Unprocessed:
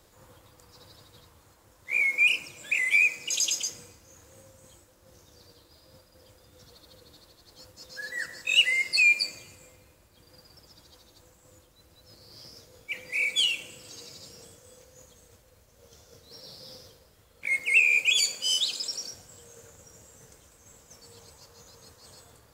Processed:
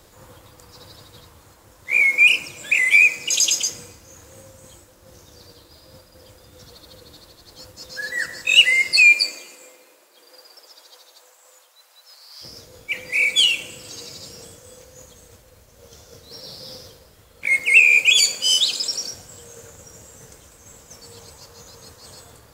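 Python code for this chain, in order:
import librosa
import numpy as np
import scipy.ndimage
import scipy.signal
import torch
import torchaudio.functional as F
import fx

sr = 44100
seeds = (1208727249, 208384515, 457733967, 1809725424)

y = fx.highpass(x, sr, hz=fx.line((8.96, 230.0), (12.41, 830.0)), slope=24, at=(8.96, 12.41), fade=0.02)
y = F.gain(torch.from_numpy(y), 8.5).numpy()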